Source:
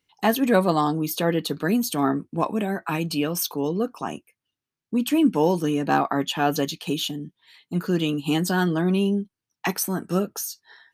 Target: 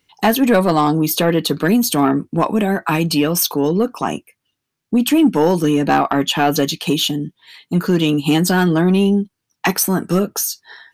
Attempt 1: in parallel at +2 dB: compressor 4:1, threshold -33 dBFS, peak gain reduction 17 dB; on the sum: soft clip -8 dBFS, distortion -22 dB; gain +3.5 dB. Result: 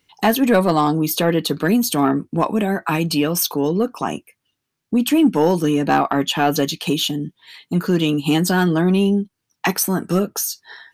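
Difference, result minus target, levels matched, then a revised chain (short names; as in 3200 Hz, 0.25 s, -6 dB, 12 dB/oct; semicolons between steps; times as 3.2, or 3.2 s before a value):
compressor: peak gain reduction +7.5 dB
in parallel at +2 dB: compressor 4:1, threshold -23 dBFS, peak gain reduction 9.5 dB; on the sum: soft clip -8 dBFS, distortion -19 dB; gain +3.5 dB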